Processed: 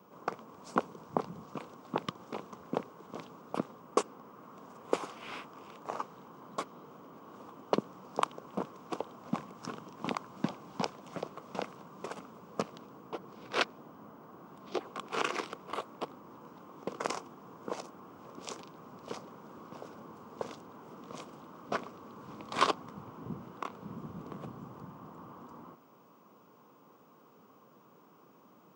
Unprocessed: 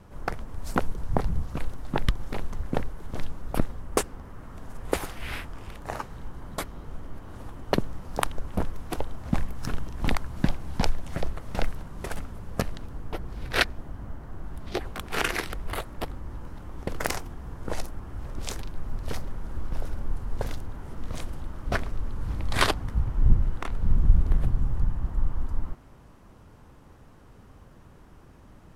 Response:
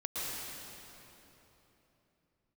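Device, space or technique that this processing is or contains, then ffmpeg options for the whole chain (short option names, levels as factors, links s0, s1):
old television with a line whistle: -af "highpass=f=180:w=0.5412,highpass=f=180:w=1.3066,equalizer=f=460:t=q:w=4:g=4,equalizer=f=1100:t=q:w=4:g=8,equalizer=f=1800:t=q:w=4:g=-10,equalizer=f=4100:t=q:w=4:g=-4,lowpass=f=7400:w=0.5412,lowpass=f=7400:w=1.3066,aeval=exprs='val(0)+0.000562*sin(2*PI*15625*n/s)':c=same,volume=0.531"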